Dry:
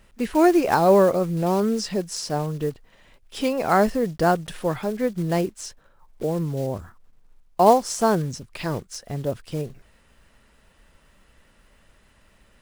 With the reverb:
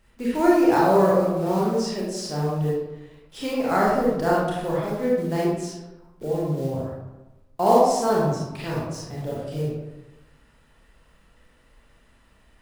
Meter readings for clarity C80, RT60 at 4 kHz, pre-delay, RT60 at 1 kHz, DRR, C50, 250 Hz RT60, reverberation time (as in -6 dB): 2.5 dB, 0.60 s, 27 ms, 1.0 s, -6.0 dB, -1.0 dB, 1.1 s, 1.0 s